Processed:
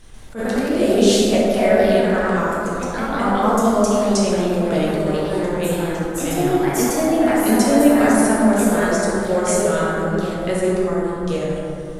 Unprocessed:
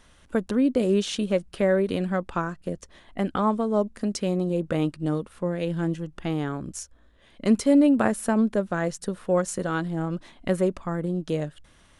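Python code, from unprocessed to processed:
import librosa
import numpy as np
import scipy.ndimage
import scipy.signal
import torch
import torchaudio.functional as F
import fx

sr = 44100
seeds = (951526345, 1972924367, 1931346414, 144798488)

y = scipy.signal.sosfilt(scipy.signal.butter(2, 140.0, 'highpass', fs=sr, output='sos'), x)
y = fx.high_shelf(y, sr, hz=2700.0, db=9.5)
y = fx.dmg_noise_colour(y, sr, seeds[0], colour='brown', level_db=-44.0)
y = fx.echo_pitch(y, sr, ms=140, semitones=2, count=2, db_per_echo=-3.0)
y = fx.rev_plate(y, sr, seeds[1], rt60_s=2.7, hf_ratio=0.35, predelay_ms=0, drr_db=-6.5)
y = fx.attack_slew(y, sr, db_per_s=210.0)
y = F.gain(torch.from_numpy(y), -2.0).numpy()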